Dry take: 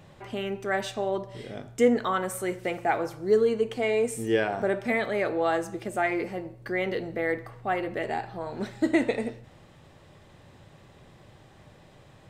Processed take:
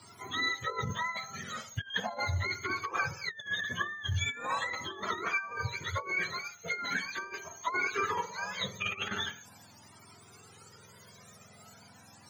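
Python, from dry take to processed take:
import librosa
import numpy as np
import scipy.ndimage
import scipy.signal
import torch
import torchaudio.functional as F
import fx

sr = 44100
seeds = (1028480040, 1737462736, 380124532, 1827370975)

y = fx.octave_mirror(x, sr, pivot_hz=880.0)
y = scipy.signal.sosfilt(scipy.signal.butter(2, 130.0, 'highpass', fs=sr, output='sos'), y)
y = fx.over_compress(y, sr, threshold_db=-32.0, ratio=-0.5)
y = fx.peak_eq(y, sr, hz=300.0, db=-8.5, octaves=0.86)
y = fx.comb_cascade(y, sr, direction='rising', hz=0.4)
y = F.gain(torch.from_numpy(y), 4.0).numpy()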